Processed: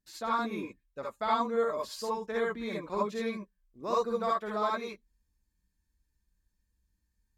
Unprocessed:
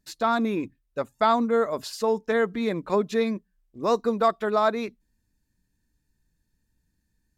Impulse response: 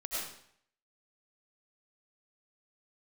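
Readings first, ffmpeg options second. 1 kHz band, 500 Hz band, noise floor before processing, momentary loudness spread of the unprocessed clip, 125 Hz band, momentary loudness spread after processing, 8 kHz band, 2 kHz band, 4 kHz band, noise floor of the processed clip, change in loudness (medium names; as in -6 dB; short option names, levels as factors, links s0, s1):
-5.5 dB, -8.0 dB, -75 dBFS, 11 LU, -9.5 dB, 13 LU, -5.5 dB, -6.5 dB, -6.0 dB, -81 dBFS, -7.5 dB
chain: -filter_complex "[1:a]atrim=start_sample=2205,atrim=end_sample=6174,asetrate=74970,aresample=44100[s0];[0:a][s0]afir=irnorm=-1:irlink=0,volume=0.708"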